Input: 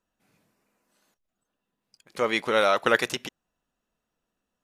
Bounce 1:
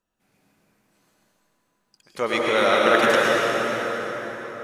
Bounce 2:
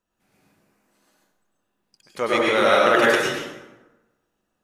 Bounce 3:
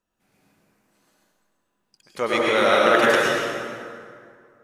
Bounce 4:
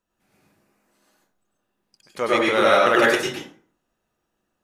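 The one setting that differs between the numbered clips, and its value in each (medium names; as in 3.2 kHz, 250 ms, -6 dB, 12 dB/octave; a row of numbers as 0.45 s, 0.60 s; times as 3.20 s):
plate-style reverb, RT60: 5.3 s, 1.1 s, 2.3 s, 0.52 s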